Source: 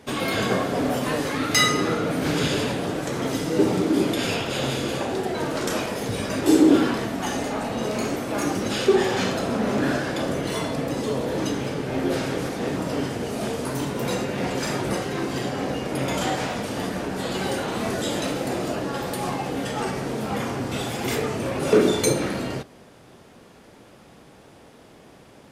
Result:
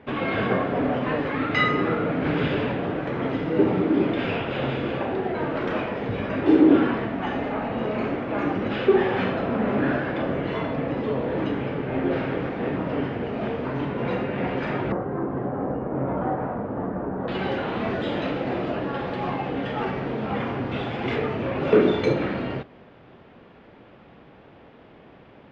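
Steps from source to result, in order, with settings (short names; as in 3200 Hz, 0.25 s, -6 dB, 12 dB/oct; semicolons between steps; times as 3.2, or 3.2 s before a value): LPF 2700 Hz 24 dB/oct, from 14.92 s 1300 Hz, from 17.28 s 3100 Hz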